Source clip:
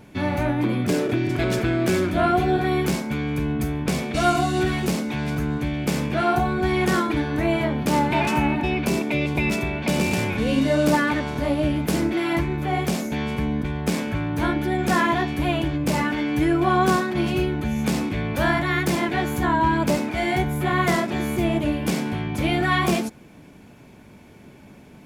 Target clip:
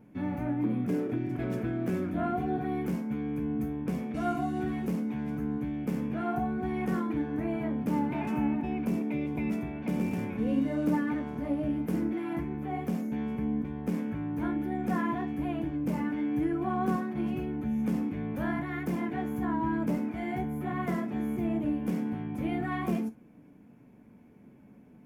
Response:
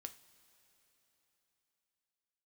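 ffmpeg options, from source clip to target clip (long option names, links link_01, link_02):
-filter_complex "[0:a]equalizer=frequency=250:width_type=o:width=1:gain=9,equalizer=frequency=4000:width_type=o:width=1:gain=-12,equalizer=frequency=8000:width_type=o:width=1:gain=-8[link_01];[1:a]atrim=start_sample=2205,afade=type=out:start_time=0.15:duration=0.01,atrim=end_sample=7056,asetrate=66150,aresample=44100[link_02];[link_01][link_02]afir=irnorm=-1:irlink=0,volume=-4.5dB"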